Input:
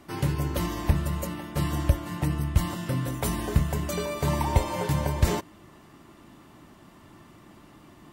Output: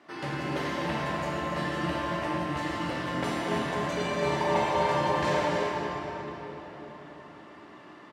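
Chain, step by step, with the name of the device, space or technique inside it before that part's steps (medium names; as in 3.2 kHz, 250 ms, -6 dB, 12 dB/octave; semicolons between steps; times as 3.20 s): station announcement (band-pass 320–4500 Hz; peaking EQ 1.7 kHz +5 dB 0.33 oct; loudspeakers at several distances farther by 84 m -10 dB, 100 m -10 dB; reverberation RT60 4.4 s, pre-delay 11 ms, DRR -6 dB); trim -3.5 dB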